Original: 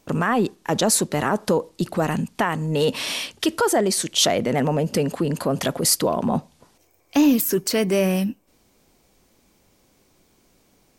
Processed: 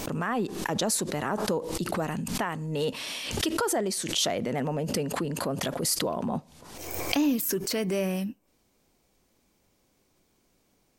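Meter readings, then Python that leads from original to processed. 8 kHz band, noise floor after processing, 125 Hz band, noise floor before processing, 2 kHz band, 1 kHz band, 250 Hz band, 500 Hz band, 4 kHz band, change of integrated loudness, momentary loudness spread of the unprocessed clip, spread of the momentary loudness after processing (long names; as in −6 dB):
−7.0 dB, −70 dBFS, −7.5 dB, −62 dBFS, −6.5 dB, −7.5 dB, −7.5 dB, −8.0 dB, −6.0 dB, −7.5 dB, 6 LU, 7 LU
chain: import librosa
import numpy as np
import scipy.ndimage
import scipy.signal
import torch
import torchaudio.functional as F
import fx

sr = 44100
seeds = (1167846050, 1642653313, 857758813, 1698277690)

y = fx.pre_swell(x, sr, db_per_s=48.0)
y = y * 10.0 ** (-8.5 / 20.0)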